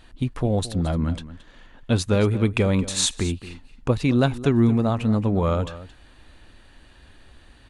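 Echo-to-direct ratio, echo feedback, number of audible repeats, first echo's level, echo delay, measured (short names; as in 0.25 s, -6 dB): -15.5 dB, no steady repeat, 1, -15.5 dB, 0.222 s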